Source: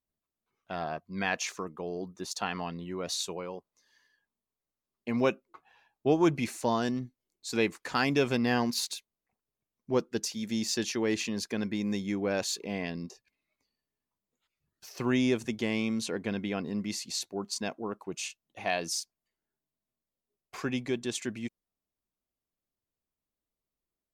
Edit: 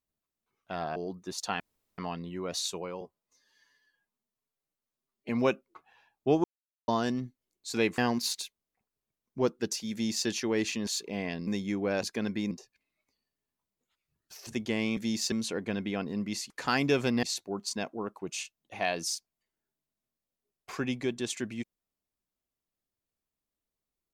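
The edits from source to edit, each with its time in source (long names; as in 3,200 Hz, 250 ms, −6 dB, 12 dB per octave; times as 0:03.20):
0:00.96–0:01.89: remove
0:02.53: splice in room tone 0.38 s
0:03.56–0:05.08: time-stretch 1.5×
0:06.23–0:06.67: silence
0:07.77–0:08.50: move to 0:17.08
0:10.44–0:10.79: duplicate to 0:15.90
0:11.39–0:11.87: swap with 0:12.43–0:13.03
0:14.99–0:15.40: remove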